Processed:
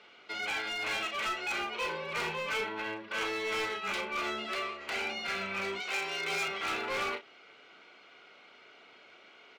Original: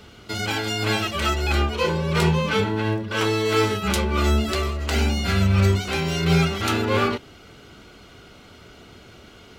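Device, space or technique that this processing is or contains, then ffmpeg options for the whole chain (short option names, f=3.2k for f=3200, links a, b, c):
megaphone: -filter_complex "[0:a]highpass=540,lowpass=3.7k,equalizer=f=2.3k:t=o:w=0.35:g=7,asoftclip=type=hard:threshold=-22.5dB,asplit=2[a][b];[b]adelay=36,volume=-9dB[c];[a][c]amix=inputs=2:normalize=0,asettb=1/sr,asplit=3[d][e][f];[d]atrim=end=5.804[g];[e]atrim=start=5.8:end=6.48,asetpts=PTS-STARTPTS,afade=t=in:d=0.004:c=qsin,afade=t=out:st=0.676:d=0.004:c=qsin,bass=f=250:g=-9,treble=f=4k:g=4[h];[f]atrim=start=6.476[i];[g][h]acrossfade=d=0.004:c1=hsin:c2=qsin[j];[j][i]acrossfade=d=0.004:c1=qsin:c2=hsin,volume=-7.5dB"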